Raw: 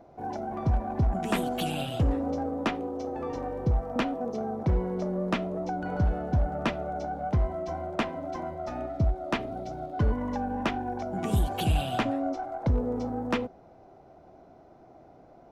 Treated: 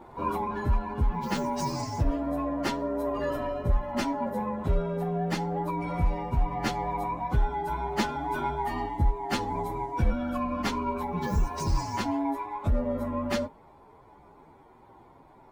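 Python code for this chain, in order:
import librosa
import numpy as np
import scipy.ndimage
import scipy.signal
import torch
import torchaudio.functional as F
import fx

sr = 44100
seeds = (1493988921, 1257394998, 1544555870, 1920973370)

y = fx.partial_stretch(x, sr, pct=125)
y = fx.rider(y, sr, range_db=10, speed_s=0.5)
y = F.gain(torch.from_numpy(y), 3.0).numpy()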